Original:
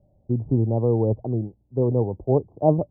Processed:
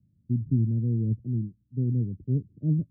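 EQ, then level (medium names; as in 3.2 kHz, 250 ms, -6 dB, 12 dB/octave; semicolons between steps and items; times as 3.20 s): high-pass 100 Hz; inverse Chebyshev low-pass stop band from 830 Hz, stop band 60 dB; 0.0 dB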